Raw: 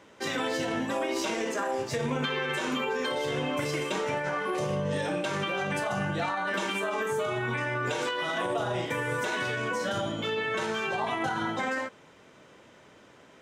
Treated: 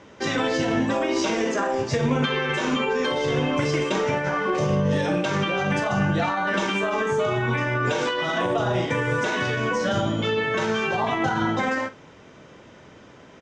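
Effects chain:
Chebyshev low-pass filter 6,400 Hz, order 3
low-shelf EQ 210 Hz +7.5 dB
notch filter 4,100 Hz, Q 29
double-tracking delay 45 ms −14 dB
level +5.5 dB

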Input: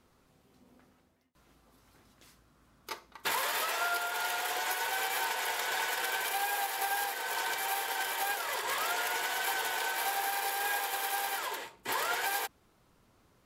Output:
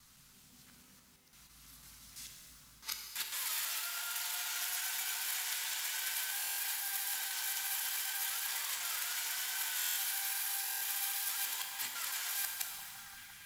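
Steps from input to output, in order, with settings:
reversed piece by piece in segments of 166 ms
reversed playback
downward compressor 12 to 1, threshold −44 dBFS, peak gain reduction 16.5 dB
reversed playback
drawn EQ curve 200 Hz 0 dB, 420 Hz −15 dB, 1,400 Hz +1 dB, 6,200 Hz +14 dB
on a send: echo through a band-pass that steps 344 ms, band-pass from 650 Hz, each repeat 0.7 octaves, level −5 dB
on the sum: buffer that repeats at 0:02.30/0:06.37/0:09.76/0:10.61, samples 1,024, times 8
reverb with rising layers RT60 1.9 s, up +12 semitones, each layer −8 dB, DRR 2.5 dB

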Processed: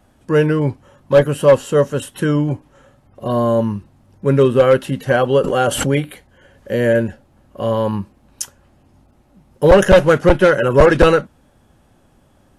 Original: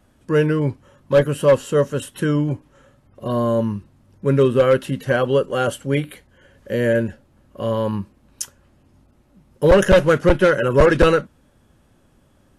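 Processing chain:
parametric band 770 Hz +5.5 dB 0.47 octaves
0:05.38–0:05.99: background raised ahead of every attack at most 44 dB per second
level +2.5 dB

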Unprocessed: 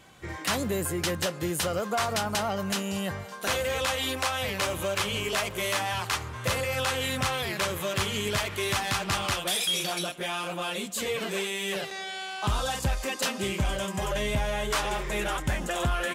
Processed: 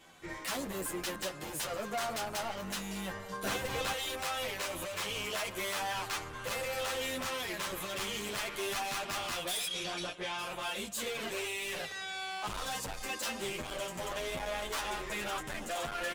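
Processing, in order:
sub-octave generator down 2 octaves, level −5 dB
hard clipping −30 dBFS, distortion −8 dB
0:03.29–0:03.93: low-shelf EQ 450 Hz +12 dB
0:09.67–0:10.39: low-pass filter 6,100 Hz 12 dB per octave
parametric band 63 Hz −14 dB 2.3 octaves
barber-pole flanger 9.4 ms +0.43 Hz

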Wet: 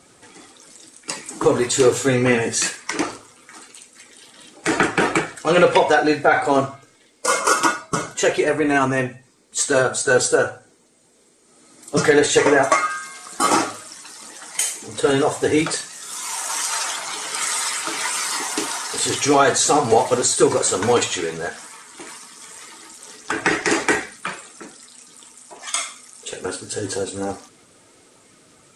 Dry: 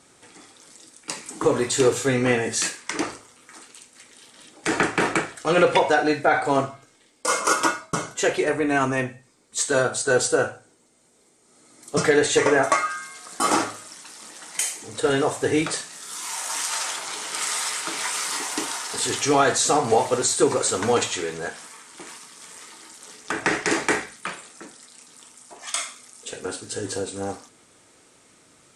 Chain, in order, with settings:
spectral magnitudes quantised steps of 15 dB
level +4 dB

